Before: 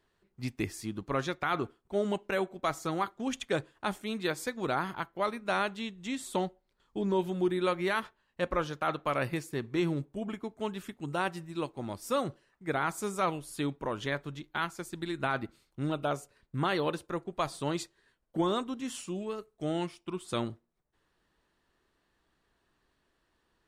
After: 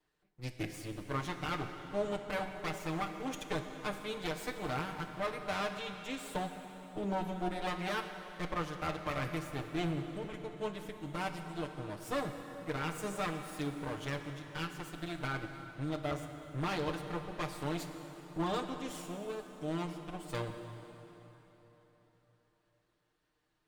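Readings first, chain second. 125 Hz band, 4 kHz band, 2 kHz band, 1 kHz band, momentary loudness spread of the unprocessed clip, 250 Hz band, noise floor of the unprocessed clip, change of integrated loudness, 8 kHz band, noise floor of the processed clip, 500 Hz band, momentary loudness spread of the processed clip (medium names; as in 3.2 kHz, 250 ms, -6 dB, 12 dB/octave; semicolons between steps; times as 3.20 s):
-2.0 dB, -3.5 dB, -4.5 dB, -5.0 dB, 8 LU, -5.0 dB, -76 dBFS, -5.0 dB, -5.0 dB, -77 dBFS, -6.0 dB, 7 LU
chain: comb filter that takes the minimum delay 6.6 ms; plate-style reverb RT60 4 s, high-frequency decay 0.8×, DRR 6 dB; trim -5 dB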